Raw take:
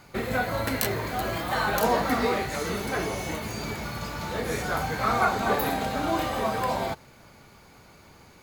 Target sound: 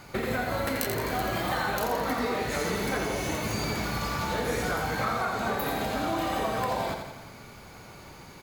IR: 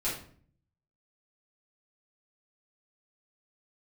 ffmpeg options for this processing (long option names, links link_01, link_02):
-af "acompressor=threshold=-31dB:ratio=6,aecho=1:1:85|170|255|340|425|510|595:0.501|0.286|0.163|0.0928|0.0529|0.0302|0.0172,volume=4dB"